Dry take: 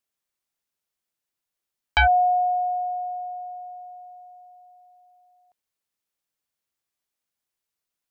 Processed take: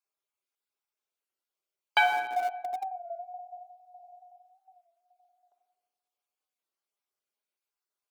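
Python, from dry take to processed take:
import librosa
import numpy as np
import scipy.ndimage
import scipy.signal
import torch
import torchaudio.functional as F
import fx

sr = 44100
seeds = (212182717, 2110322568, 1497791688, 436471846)

p1 = fx.spec_dropout(x, sr, seeds[0], share_pct=26)
p2 = fx.high_shelf(p1, sr, hz=3200.0, db=-6.0)
p3 = fx.notch(p2, sr, hz=1800.0, q=6.8)
p4 = fx.room_shoebox(p3, sr, seeds[1], volume_m3=1200.0, walls='mixed', distance_m=1.3)
p5 = fx.schmitt(p4, sr, flips_db=-26.5)
p6 = p4 + (p5 * librosa.db_to_amplitude(-4.0))
p7 = scipy.signal.sosfilt(scipy.signal.butter(4, 320.0, 'highpass', fs=sr, output='sos'), p6)
p8 = fx.record_warp(p7, sr, rpm=33.33, depth_cents=100.0)
y = p8 * librosa.db_to_amplitude(-2.5)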